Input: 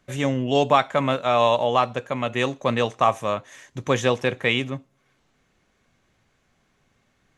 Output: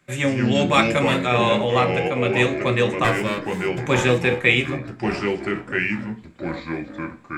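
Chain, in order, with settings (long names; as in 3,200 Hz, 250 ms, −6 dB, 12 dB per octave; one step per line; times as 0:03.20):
0:03.04–0:03.80: lower of the sound and its delayed copy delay 1.9 ms
delay with pitch and tempo change per echo 125 ms, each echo −4 semitones, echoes 3, each echo −6 dB
0:00.71–0:01.25: high-shelf EQ 4,600 Hz → 6,600 Hz +11.5 dB
convolution reverb RT60 0.35 s, pre-delay 3 ms, DRR 4.5 dB
dynamic equaliser 970 Hz, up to −6 dB, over −32 dBFS, Q 1.3
level +3 dB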